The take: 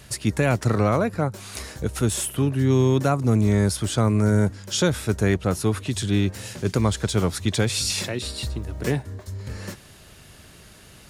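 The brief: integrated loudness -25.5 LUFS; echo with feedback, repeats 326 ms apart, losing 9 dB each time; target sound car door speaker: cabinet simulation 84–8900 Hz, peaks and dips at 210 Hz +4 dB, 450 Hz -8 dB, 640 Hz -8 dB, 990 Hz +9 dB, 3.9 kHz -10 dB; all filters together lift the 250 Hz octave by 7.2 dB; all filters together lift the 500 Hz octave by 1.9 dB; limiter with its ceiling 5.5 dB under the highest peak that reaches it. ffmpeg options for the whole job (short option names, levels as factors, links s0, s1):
-af "equalizer=f=250:t=o:g=5,equalizer=f=500:t=o:g=7.5,alimiter=limit=0.355:level=0:latency=1,highpass=84,equalizer=f=210:t=q:w=4:g=4,equalizer=f=450:t=q:w=4:g=-8,equalizer=f=640:t=q:w=4:g=-8,equalizer=f=990:t=q:w=4:g=9,equalizer=f=3900:t=q:w=4:g=-10,lowpass=f=8900:w=0.5412,lowpass=f=8900:w=1.3066,aecho=1:1:326|652|978|1304:0.355|0.124|0.0435|0.0152,volume=0.596"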